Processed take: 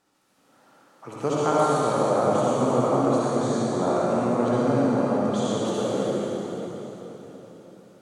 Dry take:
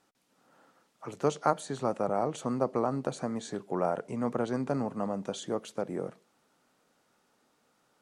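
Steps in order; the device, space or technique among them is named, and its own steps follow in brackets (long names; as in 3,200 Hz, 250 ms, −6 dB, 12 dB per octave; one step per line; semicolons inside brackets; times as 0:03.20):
cathedral (convolution reverb RT60 4.1 s, pre-delay 51 ms, DRR −8 dB)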